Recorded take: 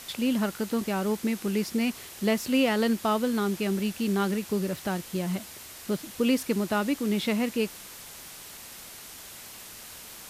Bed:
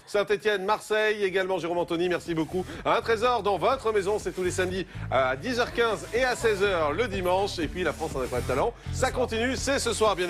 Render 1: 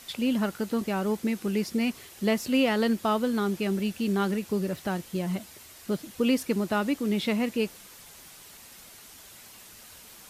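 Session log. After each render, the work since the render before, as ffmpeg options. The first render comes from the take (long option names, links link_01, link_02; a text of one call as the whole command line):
ffmpeg -i in.wav -af "afftdn=noise_reduction=6:noise_floor=-45" out.wav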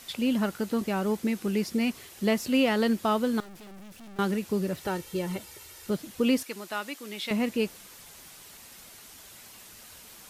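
ffmpeg -i in.wav -filter_complex "[0:a]asettb=1/sr,asplit=3[link_01][link_02][link_03];[link_01]atrim=end=3.404[link_04];[link_02]atrim=start=3.4:end=4.19,asetpts=PTS-STARTPTS,afade=type=in:duration=0.004:curve=qsin,afade=type=out:start_time=0.786:duration=0.004:curve=qsin,aeval=exprs='(tanh(200*val(0)+0.45)-tanh(0.45))/200':channel_layout=same[link_05];[link_03]atrim=start=4.186[link_06];[link_04][link_05]acrossfade=duration=0.004:curve1=hsin:curve2=qsin[link_07];[link_07][link_06]acrossfade=duration=0.004:curve1=qsin:curve2=hsin,asettb=1/sr,asplit=3[link_08][link_09][link_10];[link_08]atrim=end=4.814[link_11];[link_09]atrim=start=4.81:end=5.9,asetpts=PTS-STARTPTS,afade=type=in:duration=0.004:curve=qsin,afade=type=out:start_time=1.086:duration=0.004:curve=qsin,aecho=1:1:2.2:0.58,atrim=end_sample=48069[link_12];[link_10]atrim=start=5.896[link_13];[link_11][link_12]acrossfade=duration=0.004:curve1=hsin:curve2=qsin[link_14];[link_14][link_13]acrossfade=duration=0.004:curve1=qsin:curve2=hsin,asettb=1/sr,asplit=3[link_15][link_16][link_17];[link_15]atrim=end=6.434[link_18];[link_16]atrim=start=6.43:end=7.31,asetpts=PTS-STARTPTS,afade=type=in:duration=0.004:curve=qsin,afade=type=out:start_time=0.876:duration=0.004:curve=qsin,highpass=frequency=1400:poles=1[link_19];[link_17]atrim=start=7.306[link_20];[link_18][link_19]acrossfade=duration=0.004:curve1=hsin:curve2=qsin[link_21];[link_21][link_20]acrossfade=duration=0.004:curve1=qsin:curve2=hsin" out.wav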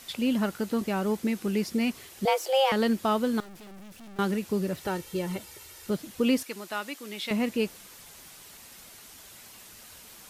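ffmpeg -i in.wav -filter_complex "[0:a]asettb=1/sr,asplit=3[link_01][link_02][link_03];[link_01]atrim=end=2.254[link_04];[link_02]atrim=start=2.25:end=2.72,asetpts=PTS-STARTPTS,afade=type=in:duration=0.004:curve=qsin,afade=type=out:start_time=0.466:duration=0.004:curve=qsin,afreqshift=270[link_05];[link_03]atrim=start=2.716[link_06];[link_04][link_05]acrossfade=duration=0.004:curve1=hsin:curve2=qsin[link_07];[link_07][link_06]acrossfade=duration=0.004:curve1=qsin:curve2=hsin" out.wav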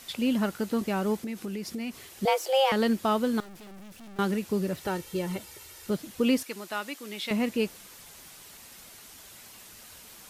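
ffmpeg -i in.wav -filter_complex "[0:a]asettb=1/sr,asplit=3[link_01][link_02][link_03];[link_01]atrim=end=1.174[link_04];[link_02]atrim=start=1.17:end=2.09,asetpts=PTS-STARTPTS,afade=type=in:duration=0.004:curve=qsin,afade=type=out:start_time=0.916:duration=0.004:curve=qsin,acompressor=threshold=-31dB:ratio=6:attack=3.2:release=140:knee=1:detection=peak[link_05];[link_03]atrim=start=2.086[link_06];[link_04][link_05]acrossfade=duration=0.004:curve1=hsin:curve2=qsin[link_07];[link_07][link_06]acrossfade=duration=0.004:curve1=qsin:curve2=hsin" out.wav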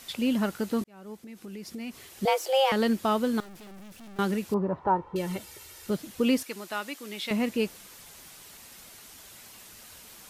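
ffmpeg -i in.wav -filter_complex "[0:a]asettb=1/sr,asplit=3[link_01][link_02][link_03];[link_01]atrim=end=4.544[link_04];[link_02]atrim=start=4.54:end=5.16,asetpts=PTS-STARTPTS,afade=type=in:duration=0.004:curve=qsin,afade=type=out:start_time=0.616:duration=0.004:curve=qsin,lowpass=frequency=980:width_type=q:width=5.5[link_05];[link_03]atrim=start=5.156[link_06];[link_04][link_05]acrossfade=duration=0.004:curve1=hsin:curve2=qsin[link_07];[link_07][link_06]acrossfade=duration=0.004:curve1=qsin:curve2=hsin,asplit=2[link_08][link_09];[link_08]atrim=end=0.84,asetpts=PTS-STARTPTS,afade=type=out:start_time=0.836:duration=0.004:curve=hsin[link_10];[link_09]atrim=start=0.84,asetpts=PTS-STARTPTS,afade=type=in:duration=1.39[link_11];[link_10][link_11]concat=n=2:v=0:a=1" out.wav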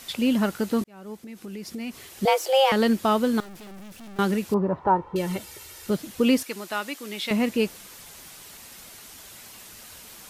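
ffmpeg -i in.wav -af "volume=4dB" out.wav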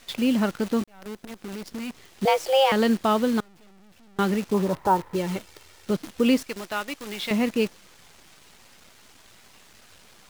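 ffmpeg -i in.wav -af "adynamicsmooth=sensitivity=3:basefreq=6300,acrusher=bits=7:dc=4:mix=0:aa=0.000001" out.wav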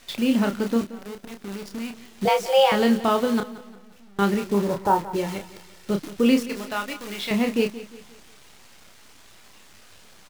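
ffmpeg -i in.wav -filter_complex "[0:a]asplit=2[link_01][link_02];[link_02]adelay=30,volume=-6dB[link_03];[link_01][link_03]amix=inputs=2:normalize=0,aecho=1:1:176|352|528|704:0.158|0.0634|0.0254|0.0101" out.wav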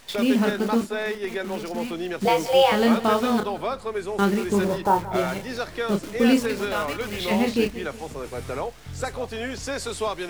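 ffmpeg -i in.wav -i bed.wav -filter_complex "[1:a]volume=-4dB[link_01];[0:a][link_01]amix=inputs=2:normalize=0" out.wav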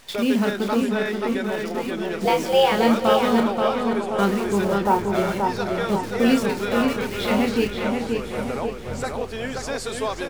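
ffmpeg -i in.wav -filter_complex "[0:a]asplit=2[link_01][link_02];[link_02]adelay=530,lowpass=frequency=3400:poles=1,volume=-3.5dB,asplit=2[link_03][link_04];[link_04]adelay=530,lowpass=frequency=3400:poles=1,volume=0.54,asplit=2[link_05][link_06];[link_06]adelay=530,lowpass=frequency=3400:poles=1,volume=0.54,asplit=2[link_07][link_08];[link_08]adelay=530,lowpass=frequency=3400:poles=1,volume=0.54,asplit=2[link_09][link_10];[link_10]adelay=530,lowpass=frequency=3400:poles=1,volume=0.54,asplit=2[link_11][link_12];[link_12]adelay=530,lowpass=frequency=3400:poles=1,volume=0.54,asplit=2[link_13][link_14];[link_14]adelay=530,lowpass=frequency=3400:poles=1,volume=0.54[link_15];[link_01][link_03][link_05][link_07][link_09][link_11][link_13][link_15]amix=inputs=8:normalize=0" out.wav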